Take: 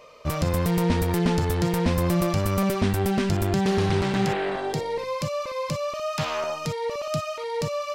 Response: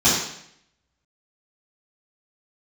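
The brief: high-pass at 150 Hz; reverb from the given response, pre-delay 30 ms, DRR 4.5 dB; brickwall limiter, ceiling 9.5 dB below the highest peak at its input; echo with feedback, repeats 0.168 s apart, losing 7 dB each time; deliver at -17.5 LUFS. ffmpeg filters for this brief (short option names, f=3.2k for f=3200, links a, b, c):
-filter_complex "[0:a]highpass=150,alimiter=limit=-20.5dB:level=0:latency=1,aecho=1:1:168|336|504|672|840:0.447|0.201|0.0905|0.0407|0.0183,asplit=2[a][b];[1:a]atrim=start_sample=2205,adelay=30[c];[b][c]afir=irnorm=-1:irlink=0,volume=-24dB[d];[a][d]amix=inputs=2:normalize=0,volume=10.5dB"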